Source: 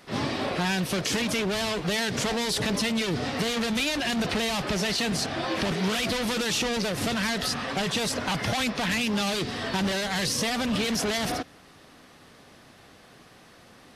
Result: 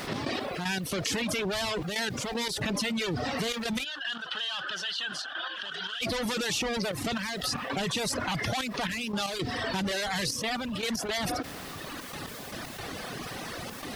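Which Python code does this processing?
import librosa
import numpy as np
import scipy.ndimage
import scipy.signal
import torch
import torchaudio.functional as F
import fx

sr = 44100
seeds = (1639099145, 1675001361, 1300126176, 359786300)

y = fx.dereverb_blind(x, sr, rt60_s=1.3)
y = fx.step_gate(y, sr, bpm=115, pattern='x.x..x.xxxxxx', floor_db=-12.0, edge_ms=4.5)
y = fx.quant_dither(y, sr, seeds[0], bits=12, dither='triangular')
y = fx.double_bandpass(y, sr, hz=2200.0, octaves=0.98, at=(3.83, 6.01), fade=0.02)
y = fx.env_flatten(y, sr, amount_pct=70)
y = y * 10.0 ** (-4.0 / 20.0)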